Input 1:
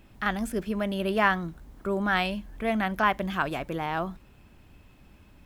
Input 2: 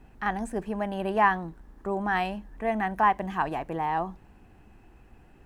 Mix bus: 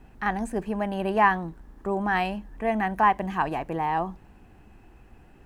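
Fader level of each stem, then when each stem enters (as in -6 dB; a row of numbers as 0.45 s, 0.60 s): -19.0 dB, +2.0 dB; 0.00 s, 0.00 s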